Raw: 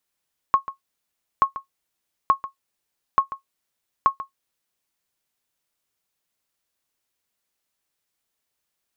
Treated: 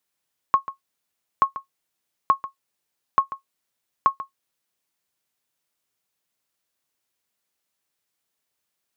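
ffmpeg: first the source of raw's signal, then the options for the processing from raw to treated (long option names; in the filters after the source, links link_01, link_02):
-f lavfi -i "aevalsrc='0.447*(sin(2*PI*1090*mod(t,0.88))*exp(-6.91*mod(t,0.88)/0.12)+0.178*sin(2*PI*1090*max(mod(t,0.88)-0.14,0))*exp(-6.91*max(mod(t,0.88)-0.14,0)/0.12))':duration=4.4:sample_rate=44100"
-af "highpass=75"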